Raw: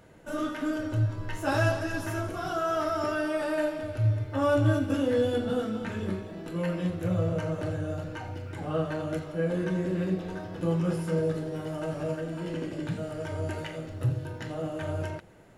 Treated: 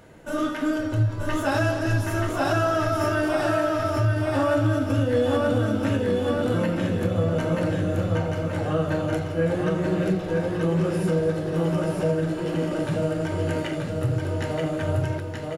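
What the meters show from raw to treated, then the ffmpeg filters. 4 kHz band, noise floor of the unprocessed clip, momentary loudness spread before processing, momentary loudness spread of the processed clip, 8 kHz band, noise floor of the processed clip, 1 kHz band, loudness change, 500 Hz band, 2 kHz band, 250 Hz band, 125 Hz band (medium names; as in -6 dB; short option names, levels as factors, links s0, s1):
+6.0 dB, -41 dBFS, 9 LU, 4 LU, +6.5 dB, -31 dBFS, +6.0 dB, +6.0 dB, +6.0 dB, +6.0 dB, +6.0 dB, +5.5 dB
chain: -filter_complex "[0:a]asplit=2[s0][s1];[s1]aecho=0:1:931|1862|2793|3724|4655:0.708|0.297|0.125|0.0525|0.022[s2];[s0][s2]amix=inputs=2:normalize=0,alimiter=limit=0.119:level=0:latency=1:release=187,bandreject=f=60:t=h:w=6,bandreject=f=120:t=h:w=6,bandreject=f=180:t=h:w=6,volume=1.88"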